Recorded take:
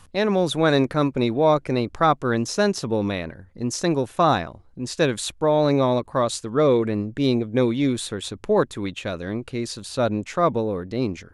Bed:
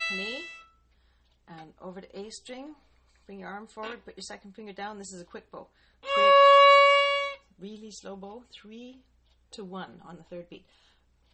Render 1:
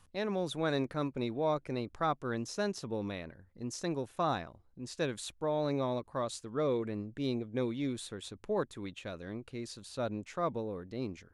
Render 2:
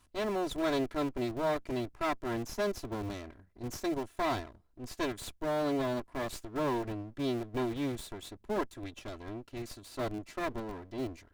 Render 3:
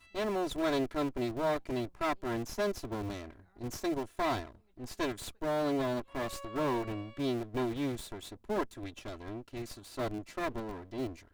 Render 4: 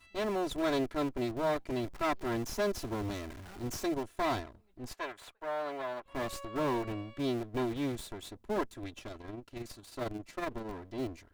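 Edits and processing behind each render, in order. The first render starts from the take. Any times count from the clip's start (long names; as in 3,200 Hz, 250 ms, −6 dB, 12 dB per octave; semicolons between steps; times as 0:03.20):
level −13.5 dB
lower of the sound and its delayed copy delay 3 ms; in parallel at −8.5 dB: comparator with hysteresis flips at −35 dBFS
mix in bed −31 dB
0:01.83–0:03.85: converter with a step at zero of −43.5 dBFS; 0:04.93–0:06.06: three-way crossover with the lows and the highs turned down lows −19 dB, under 540 Hz, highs −12 dB, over 2,800 Hz; 0:09.07–0:10.67: amplitude modulation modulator 22 Hz, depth 30%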